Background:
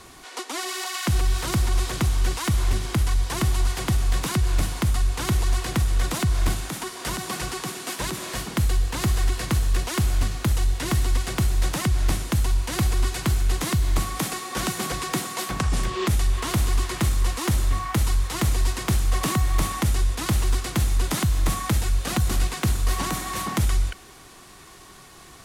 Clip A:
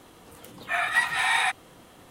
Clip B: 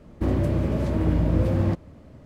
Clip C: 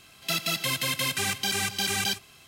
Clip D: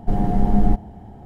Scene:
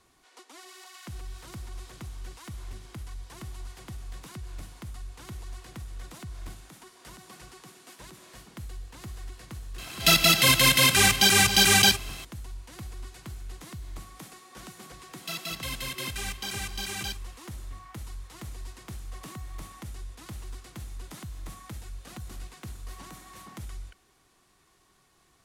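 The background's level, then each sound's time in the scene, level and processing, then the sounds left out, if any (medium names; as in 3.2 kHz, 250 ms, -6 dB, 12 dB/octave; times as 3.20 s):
background -18.5 dB
9.78 s: add C -5.5 dB + loudness maximiser +17.5 dB
14.99 s: add C -7.5 dB
not used: A, B, D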